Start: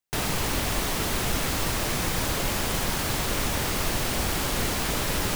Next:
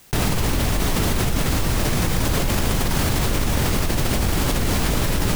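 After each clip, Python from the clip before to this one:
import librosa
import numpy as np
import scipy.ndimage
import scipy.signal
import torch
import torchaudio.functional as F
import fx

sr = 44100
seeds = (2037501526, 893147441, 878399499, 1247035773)

y = fx.low_shelf(x, sr, hz=330.0, db=9.0)
y = fx.env_flatten(y, sr, amount_pct=100)
y = F.gain(torch.from_numpy(y), -4.0).numpy()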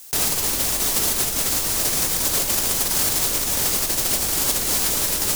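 y = fx.bass_treble(x, sr, bass_db=-11, treble_db=14)
y = F.gain(torch.from_numpy(y), -4.0).numpy()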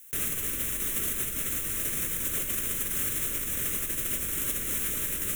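y = fx.fixed_phaser(x, sr, hz=2000.0, stages=4)
y = F.gain(torch.from_numpy(y), -7.0).numpy()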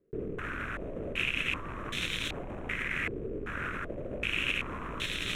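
y = fx.rattle_buzz(x, sr, strikes_db=-42.0, level_db=-26.0)
y = fx.filter_held_lowpass(y, sr, hz=2.6, low_hz=430.0, high_hz=3700.0)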